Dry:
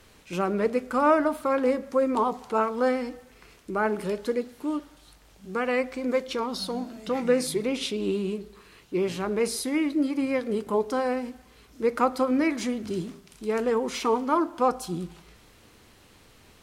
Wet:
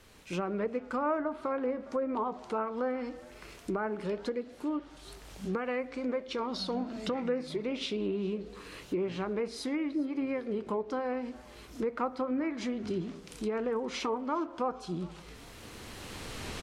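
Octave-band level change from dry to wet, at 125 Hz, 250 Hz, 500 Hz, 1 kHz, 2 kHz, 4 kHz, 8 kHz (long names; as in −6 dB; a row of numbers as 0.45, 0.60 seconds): −3.5, −6.0, −7.5, −8.5, −8.0, −5.0, −11.0 decibels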